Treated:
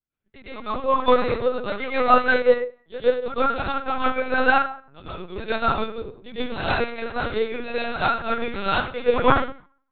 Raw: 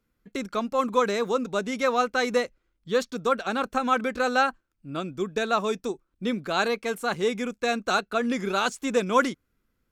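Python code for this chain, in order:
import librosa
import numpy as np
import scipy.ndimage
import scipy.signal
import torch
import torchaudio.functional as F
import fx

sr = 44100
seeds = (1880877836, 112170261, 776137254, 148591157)

y = fx.high_shelf(x, sr, hz=3100.0, db=10.0)
y = fx.rev_plate(y, sr, seeds[0], rt60_s=0.71, hf_ratio=0.65, predelay_ms=90, drr_db=-9.5)
y = fx.lpc_vocoder(y, sr, seeds[1], excitation='pitch_kept', order=10)
y = fx.upward_expand(y, sr, threshold_db=-41.0, expansion=1.5)
y = F.gain(torch.from_numpy(y), -4.5).numpy()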